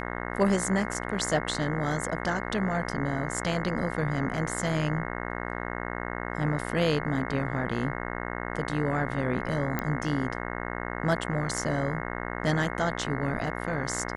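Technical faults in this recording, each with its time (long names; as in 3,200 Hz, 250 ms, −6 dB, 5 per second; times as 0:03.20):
mains buzz 60 Hz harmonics 36 −34 dBFS
0:09.79: click −14 dBFS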